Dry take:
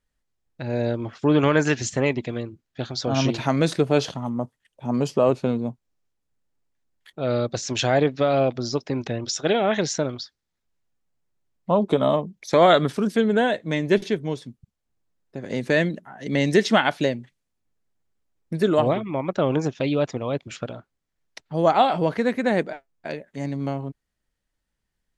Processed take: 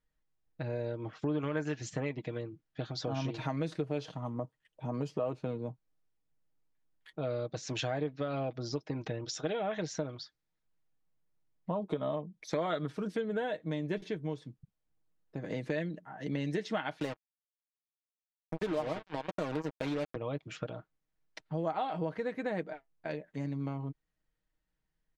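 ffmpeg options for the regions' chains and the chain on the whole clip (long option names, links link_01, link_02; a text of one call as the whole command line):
ffmpeg -i in.wav -filter_complex "[0:a]asettb=1/sr,asplit=3[link_01][link_02][link_03];[link_01]atrim=end=17.004[link_04];[link_02]atrim=start=17:end=20.16,asetpts=PTS-STARTPTS,afade=type=in:duration=0.004:curve=qsin,afade=type=out:start_time=3.156:duration=0.004:curve=qsin,highpass=170,acrusher=bits=3:mix=0:aa=0.5[link_05];[link_03]atrim=start=20.156[link_06];[link_04][link_05]acrossfade=duration=0.004:curve1=hsin:curve2=qsin[link_07];[link_07][link_06]acrossfade=duration=0.004:curve1=qsin:curve2=hsin,lowpass=frequency=3100:poles=1,aecho=1:1:6.4:0.51,acompressor=threshold=-29dB:ratio=3,volume=-5dB" out.wav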